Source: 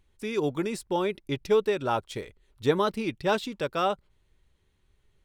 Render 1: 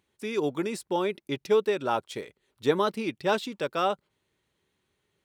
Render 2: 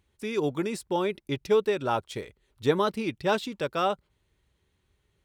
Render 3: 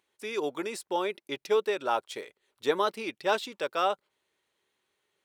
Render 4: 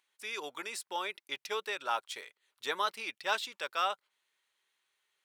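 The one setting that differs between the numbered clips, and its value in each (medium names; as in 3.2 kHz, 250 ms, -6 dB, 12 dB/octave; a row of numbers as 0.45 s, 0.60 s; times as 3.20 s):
high-pass, cutoff frequency: 170 Hz, 55 Hz, 430 Hz, 1.1 kHz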